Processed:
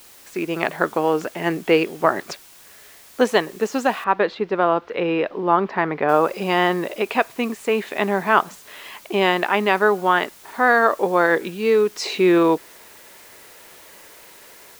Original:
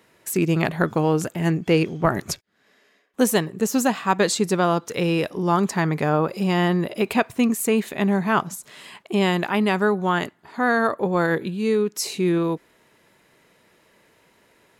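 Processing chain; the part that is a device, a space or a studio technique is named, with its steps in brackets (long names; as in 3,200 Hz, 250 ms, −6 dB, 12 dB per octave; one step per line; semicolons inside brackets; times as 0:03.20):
dictaphone (band-pass filter 390–3,400 Hz; automatic gain control gain up to 12 dB; tape wow and flutter 28 cents; white noise bed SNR 26 dB)
0:04.04–0:06.09: high-frequency loss of the air 320 metres
level −1 dB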